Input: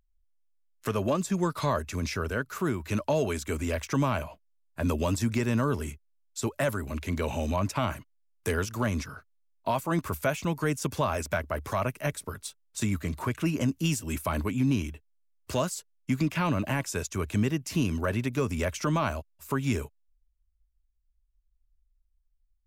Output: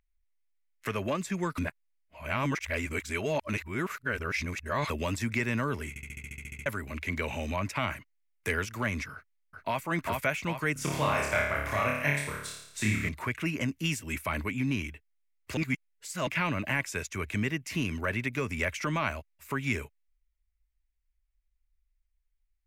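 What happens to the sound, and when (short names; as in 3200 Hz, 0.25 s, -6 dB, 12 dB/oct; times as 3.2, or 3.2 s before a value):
1.58–4.9 reverse
5.89 stutter in place 0.07 s, 11 plays
9.13–9.8 echo throw 0.4 s, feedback 50%, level -2 dB
10.73–13.09 flutter echo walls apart 4.8 m, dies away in 0.79 s
15.57–16.27 reverse
whole clip: bell 2100 Hz +13.5 dB 0.84 oct; gain -5 dB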